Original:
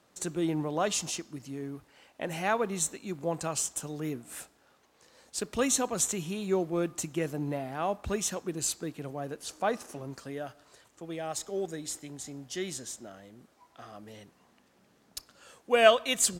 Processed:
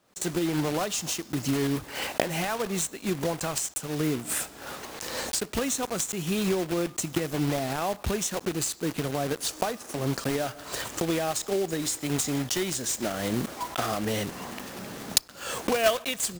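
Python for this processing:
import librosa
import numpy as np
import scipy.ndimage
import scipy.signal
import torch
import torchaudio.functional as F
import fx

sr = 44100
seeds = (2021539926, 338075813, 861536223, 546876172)

y = fx.block_float(x, sr, bits=3)
y = fx.recorder_agc(y, sr, target_db=-15.5, rise_db_per_s=50.0, max_gain_db=30)
y = y * librosa.db_to_amplitude(-4.0)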